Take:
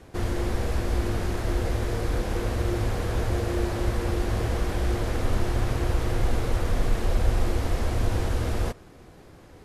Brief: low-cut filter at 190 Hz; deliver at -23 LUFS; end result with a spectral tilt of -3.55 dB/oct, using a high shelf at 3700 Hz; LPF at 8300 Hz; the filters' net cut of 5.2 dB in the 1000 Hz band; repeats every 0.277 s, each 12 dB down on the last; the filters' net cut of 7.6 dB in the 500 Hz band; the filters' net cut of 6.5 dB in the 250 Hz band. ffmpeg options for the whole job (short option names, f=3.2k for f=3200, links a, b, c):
-af "highpass=190,lowpass=8.3k,equalizer=f=250:t=o:g=-4,equalizer=f=500:t=o:g=-7.5,equalizer=f=1k:t=o:g=-4.5,highshelf=f=3.7k:g=6.5,aecho=1:1:277|554|831:0.251|0.0628|0.0157,volume=12dB"